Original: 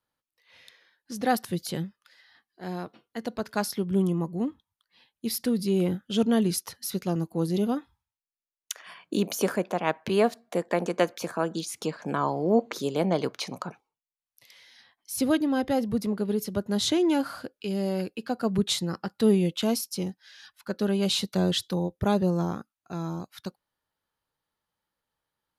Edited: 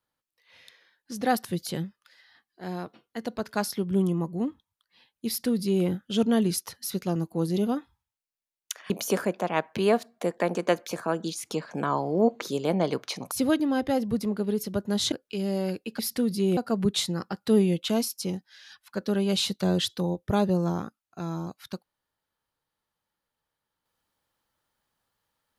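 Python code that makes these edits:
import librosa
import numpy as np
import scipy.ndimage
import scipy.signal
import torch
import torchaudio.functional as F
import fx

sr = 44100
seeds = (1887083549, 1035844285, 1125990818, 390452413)

y = fx.edit(x, sr, fx.duplicate(start_s=5.27, length_s=0.58, to_s=18.3),
    fx.cut(start_s=8.9, length_s=0.31),
    fx.cut(start_s=13.62, length_s=1.5),
    fx.cut(start_s=16.93, length_s=0.5), tone=tone)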